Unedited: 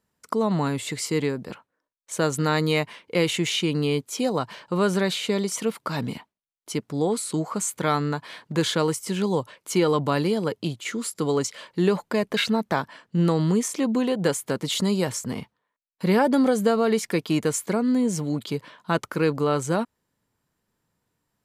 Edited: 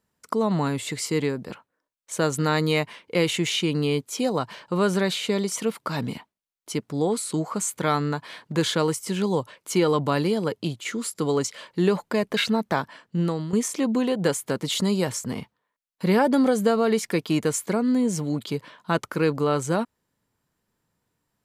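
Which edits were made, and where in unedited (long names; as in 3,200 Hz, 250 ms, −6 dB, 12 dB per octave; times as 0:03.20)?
0:12.81–0:13.53: fade out equal-power, to −12.5 dB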